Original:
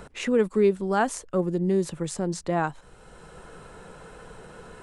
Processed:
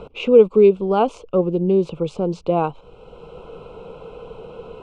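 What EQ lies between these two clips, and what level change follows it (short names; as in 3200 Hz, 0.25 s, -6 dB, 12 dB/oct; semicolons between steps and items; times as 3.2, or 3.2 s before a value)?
Butterworth band-stop 1800 Hz, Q 1.2; synth low-pass 2500 Hz, resonance Q 2.4; bell 470 Hz +9 dB 0.43 oct; +4.0 dB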